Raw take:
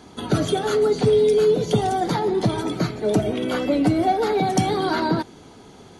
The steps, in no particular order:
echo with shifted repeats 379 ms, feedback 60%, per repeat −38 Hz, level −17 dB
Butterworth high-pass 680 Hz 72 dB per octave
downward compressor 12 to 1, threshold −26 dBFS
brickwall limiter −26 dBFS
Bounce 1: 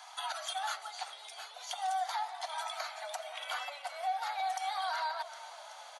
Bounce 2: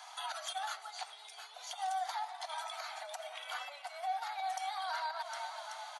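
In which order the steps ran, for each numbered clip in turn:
downward compressor, then Butterworth high-pass, then echo with shifted repeats, then brickwall limiter
echo with shifted repeats, then downward compressor, then brickwall limiter, then Butterworth high-pass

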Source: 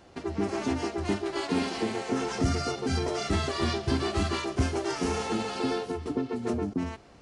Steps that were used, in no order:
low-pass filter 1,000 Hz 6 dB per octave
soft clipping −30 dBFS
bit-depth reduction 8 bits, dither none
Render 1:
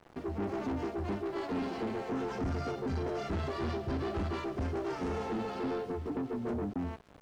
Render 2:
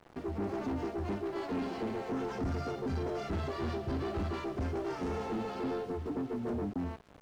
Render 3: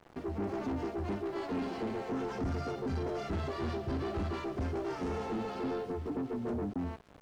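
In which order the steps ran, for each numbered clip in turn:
bit-depth reduction, then low-pass filter, then soft clipping
soft clipping, then bit-depth reduction, then low-pass filter
bit-depth reduction, then soft clipping, then low-pass filter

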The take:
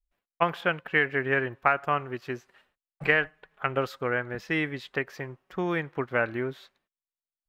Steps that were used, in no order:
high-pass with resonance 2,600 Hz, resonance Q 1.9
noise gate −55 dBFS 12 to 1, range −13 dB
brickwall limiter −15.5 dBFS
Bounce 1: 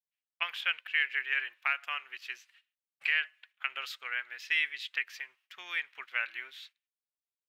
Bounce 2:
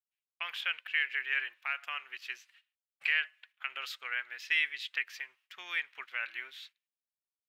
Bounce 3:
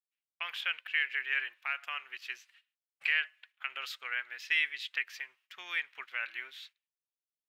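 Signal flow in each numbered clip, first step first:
noise gate, then high-pass with resonance, then brickwall limiter
noise gate, then brickwall limiter, then high-pass with resonance
brickwall limiter, then noise gate, then high-pass with resonance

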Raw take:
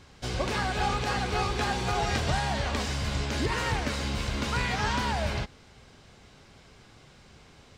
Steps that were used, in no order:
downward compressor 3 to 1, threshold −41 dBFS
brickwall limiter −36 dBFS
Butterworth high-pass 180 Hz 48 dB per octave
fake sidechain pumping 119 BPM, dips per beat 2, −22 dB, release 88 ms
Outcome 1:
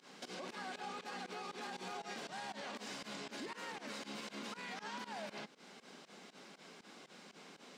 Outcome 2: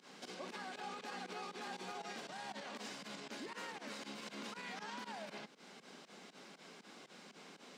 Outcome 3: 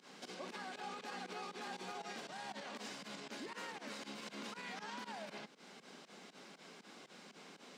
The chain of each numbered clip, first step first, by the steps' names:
downward compressor, then Butterworth high-pass, then brickwall limiter, then fake sidechain pumping
fake sidechain pumping, then downward compressor, then brickwall limiter, then Butterworth high-pass
downward compressor, then fake sidechain pumping, then brickwall limiter, then Butterworth high-pass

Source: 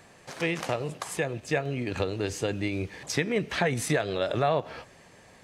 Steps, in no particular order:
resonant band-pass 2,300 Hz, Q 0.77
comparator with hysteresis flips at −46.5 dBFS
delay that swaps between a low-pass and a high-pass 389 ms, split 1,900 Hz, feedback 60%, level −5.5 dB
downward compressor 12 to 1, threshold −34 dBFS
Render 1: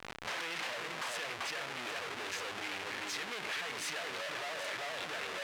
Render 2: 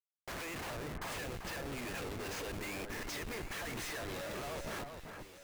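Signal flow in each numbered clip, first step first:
delay that swaps between a low-pass and a high-pass, then comparator with hysteresis, then resonant band-pass, then downward compressor
resonant band-pass, then downward compressor, then comparator with hysteresis, then delay that swaps between a low-pass and a high-pass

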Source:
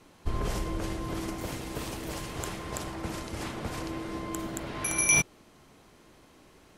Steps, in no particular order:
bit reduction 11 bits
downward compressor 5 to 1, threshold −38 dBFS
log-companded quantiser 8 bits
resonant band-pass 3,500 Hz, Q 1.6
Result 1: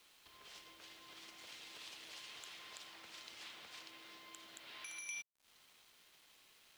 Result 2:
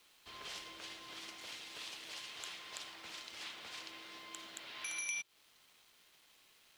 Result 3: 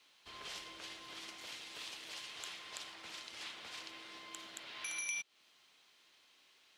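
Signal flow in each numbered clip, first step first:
log-companded quantiser, then downward compressor, then resonant band-pass, then bit reduction
log-companded quantiser, then resonant band-pass, then bit reduction, then downward compressor
bit reduction, then resonant band-pass, then log-companded quantiser, then downward compressor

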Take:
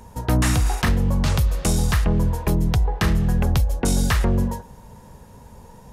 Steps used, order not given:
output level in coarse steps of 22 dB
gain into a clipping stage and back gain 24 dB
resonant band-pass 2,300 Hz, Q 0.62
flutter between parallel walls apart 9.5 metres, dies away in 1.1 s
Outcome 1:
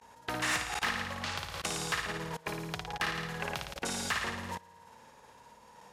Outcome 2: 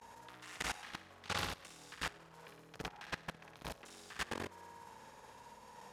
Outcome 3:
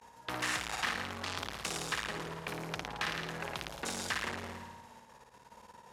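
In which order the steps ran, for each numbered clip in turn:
flutter between parallel walls, then output level in coarse steps, then resonant band-pass, then gain into a clipping stage and back
gain into a clipping stage and back, then flutter between parallel walls, then output level in coarse steps, then resonant band-pass
output level in coarse steps, then flutter between parallel walls, then gain into a clipping stage and back, then resonant band-pass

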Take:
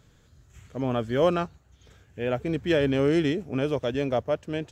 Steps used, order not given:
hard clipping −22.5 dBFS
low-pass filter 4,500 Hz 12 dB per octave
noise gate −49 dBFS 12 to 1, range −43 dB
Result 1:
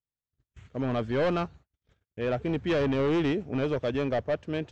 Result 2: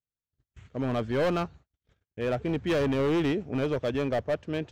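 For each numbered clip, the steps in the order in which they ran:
hard clipping, then noise gate, then low-pass filter
low-pass filter, then hard clipping, then noise gate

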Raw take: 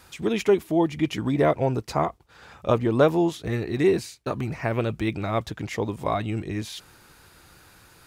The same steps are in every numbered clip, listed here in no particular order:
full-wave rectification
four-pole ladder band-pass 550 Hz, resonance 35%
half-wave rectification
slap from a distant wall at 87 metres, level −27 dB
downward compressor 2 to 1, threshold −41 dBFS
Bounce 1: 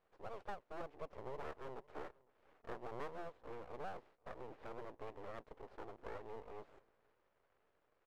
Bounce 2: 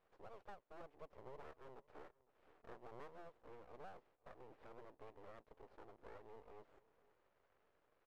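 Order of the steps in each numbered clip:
slap from a distant wall, then first full-wave rectification, then four-pole ladder band-pass, then downward compressor, then second half-wave rectification
first full-wave rectification, then slap from a distant wall, then downward compressor, then four-pole ladder band-pass, then second half-wave rectification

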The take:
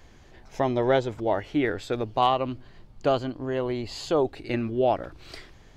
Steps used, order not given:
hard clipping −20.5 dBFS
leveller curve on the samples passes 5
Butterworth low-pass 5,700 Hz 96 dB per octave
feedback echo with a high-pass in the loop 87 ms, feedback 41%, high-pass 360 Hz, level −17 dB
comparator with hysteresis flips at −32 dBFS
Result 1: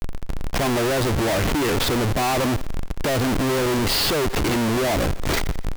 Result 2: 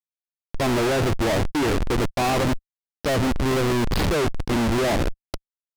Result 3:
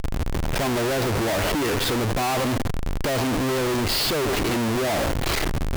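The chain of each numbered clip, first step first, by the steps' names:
leveller curve on the samples, then Butterworth low-pass, then comparator with hysteresis, then feedback echo with a high-pass in the loop, then hard clipping
feedback echo with a high-pass in the loop, then comparator with hysteresis, then Butterworth low-pass, then leveller curve on the samples, then hard clipping
Butterworth low-pass, then hard clipping, then feedback echo with a high-pass in the loop, then leveller curve on the samples, then comparator with hysteresis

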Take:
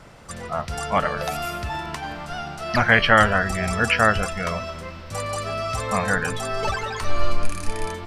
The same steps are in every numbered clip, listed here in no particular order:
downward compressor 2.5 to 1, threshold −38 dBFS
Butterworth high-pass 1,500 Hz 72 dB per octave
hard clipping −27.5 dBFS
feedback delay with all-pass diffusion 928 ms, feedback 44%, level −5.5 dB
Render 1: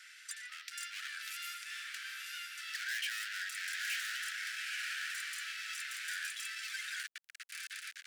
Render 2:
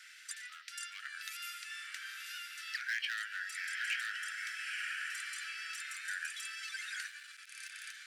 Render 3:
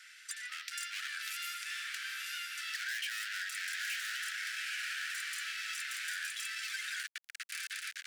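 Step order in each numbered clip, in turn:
feedback delay with all-pass diffusion, then hard clipping, then downward compressor, then Butterworth high-pass
feedback delay with all-pass diffusion, then downward compressor, then hard clipping, then Butterworth high-pass
feedback delay with all-pass diffusion, then hard clipping, then Butterworth high-pass, then downward compressor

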